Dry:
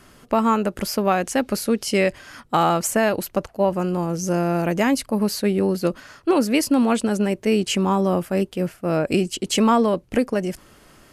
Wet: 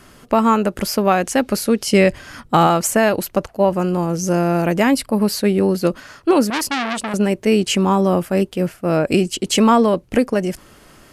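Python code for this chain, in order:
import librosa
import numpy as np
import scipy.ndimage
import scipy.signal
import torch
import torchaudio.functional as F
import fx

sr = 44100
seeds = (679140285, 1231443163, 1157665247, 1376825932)

y = fx.low_shelf(x, sr, hz=230.0, db=7.5, at=(1.93, 2.67))
y = fx.notch(y, sr, hz=6400.0, q=6.6, at=(4.75, 5.33))
y = fx.transformer_sat(y, sr, knee_hz=2800.0, at=(6.5, 7.14))
y = y * 10.0 ** (4.0 / 20.0)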